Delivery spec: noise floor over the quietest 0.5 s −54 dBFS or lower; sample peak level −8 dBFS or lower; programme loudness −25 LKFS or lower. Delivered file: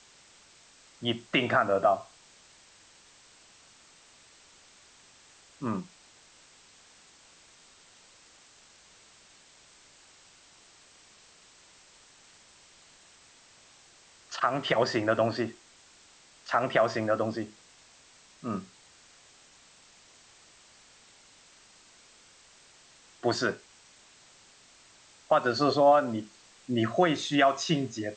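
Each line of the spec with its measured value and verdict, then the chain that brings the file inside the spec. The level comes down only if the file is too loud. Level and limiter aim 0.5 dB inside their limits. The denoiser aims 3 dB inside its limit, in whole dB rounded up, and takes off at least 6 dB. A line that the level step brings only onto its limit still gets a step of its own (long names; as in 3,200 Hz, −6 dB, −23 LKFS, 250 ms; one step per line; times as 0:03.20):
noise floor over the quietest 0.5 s −58 dBFS: in spec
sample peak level −11.5 dBFS: in spec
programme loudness −28.0 LKFS: in spec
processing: no processing needed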